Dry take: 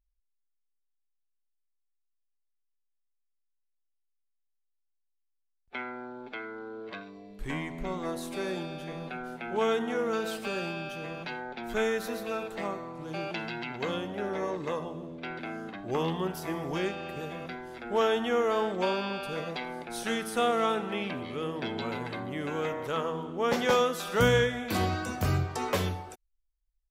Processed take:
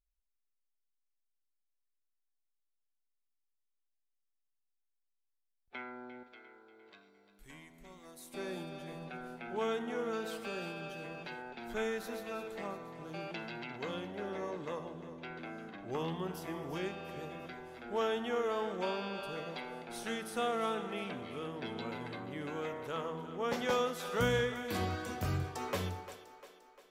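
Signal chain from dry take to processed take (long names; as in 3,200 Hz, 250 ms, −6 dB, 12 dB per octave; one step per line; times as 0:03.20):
0:06.23–0:08.34: first-order pre-emphasis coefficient 0.8
echo with a time of its own for lows and highs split 300 Hz, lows 84 ms, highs 349 ms, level −13 dB
level −7.5 dB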